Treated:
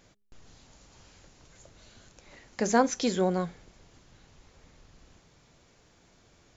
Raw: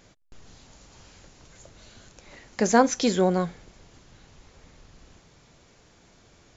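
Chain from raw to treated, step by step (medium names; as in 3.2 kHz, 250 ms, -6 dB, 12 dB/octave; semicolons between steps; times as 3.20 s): de-hum 203.8 Hz, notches 2; trim -4.5 dB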